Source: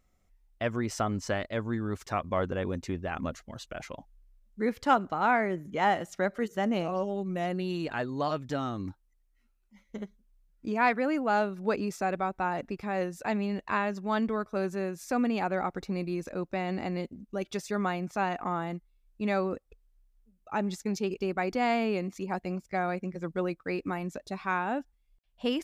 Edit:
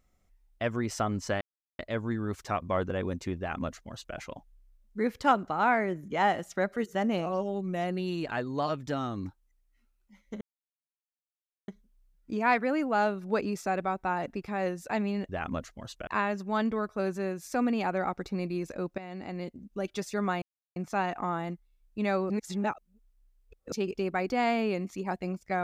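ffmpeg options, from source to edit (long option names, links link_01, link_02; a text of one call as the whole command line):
ffmpeg -i in.wav -filter_complex "[0:a]asplit=9[link_01][link_02][link_03][link_04][link_05][link_06][link_07][link_08][link_09];[link_01]atrim=end=1.41,asetpts=PTS-STARTPTS,afade=type=out:start_time=1.406:duration=0.004:curve=hsin,apad=pad_dur=0.38[link_10];[link_02]atrim=start=1.41:end=10.03,asetpts=PTS-STARTPTS,afade=type=in:duration=0.004:curve=hsin,afade=type=out:start_time=8.616:duration=0.004:curve=hsin,apad=pad_dur=1.27[link_11];[link_03]atrim=start=10.03:end=13.642,asetpts=PTS-STARTPTS,afade=type=in:duration=0.004:curve=hsin[link_12];[link_04]atrim=start=2.998:end=3.782[link_13];[link_05]atrim=start=13.638:end=16.55,asetpts=PTS-STARTPTS,afade=type=out:start_time=2.908:duration=0.004:curve=hsin:silence=0.223872[link_14];[link_06]atrim=start=16.55:end=17.99,asetpts=PTS-STARTPTS,afade=type=in:duration=0.75:silence=0.223872,afade=type=out:start_time=1.436:duration=0.004:curve=hsin,apad=pad_dur=0.34[link_15];[link_07]atrim=start=17.99:end=19.532,asetpts=PTS-STARTPTS,afade=type=in:duration=0.004:curve=hsin[link_16];[link_08]atrim=start=19.528:end=20.952,asetpts=PTS-STARTPTS,areverse[link_17];[link_09]atrim=start=20.948[link_18];[link_10][link_11][link_12]concat=n=3:v=0:a=1[link_19];[link_19][link_13]acrossfade=duration=0.004:curve1=hsin:curve2=hsin[link_20];[link_14][link_15][link_16]concat=n=3:v=0:a=1[link_21];[link_20][link_21]acrossfade=duration=0.004:curve1=hsin:curve2=hsin[link_22];[link_22][link_17]acrossfade=duration=0.004:curve1=hsin:curve2=hsin[link_23];[link_23][link_18]acrossfade=duration=0.004:curve1=hsin:curve2=hsin" out.wav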